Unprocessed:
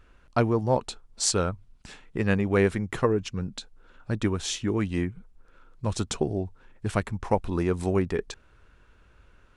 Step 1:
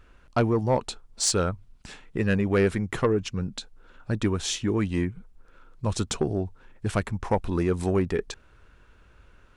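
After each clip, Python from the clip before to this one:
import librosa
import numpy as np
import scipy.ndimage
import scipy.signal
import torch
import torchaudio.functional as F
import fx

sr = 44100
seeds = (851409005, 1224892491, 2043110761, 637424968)

y = 10.0 ** (-15.0 / 20.0) * np.tanh(x / 10.0 ** (-15.0 / 20.0))
y = F.gain(torch.from_numpy(y), 2.0).numpy()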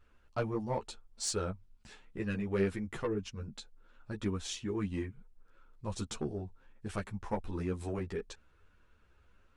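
y = fx.ensemble(x, sr)
y = F.gain(torch.from_numpy(y), -8.0).numpy()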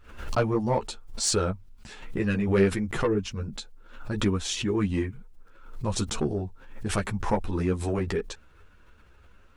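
y = fx.pre_swell(x, sr, db_per_s=85.0)
y = F.gain(torch.from_numpy(y), 9.0).numpy()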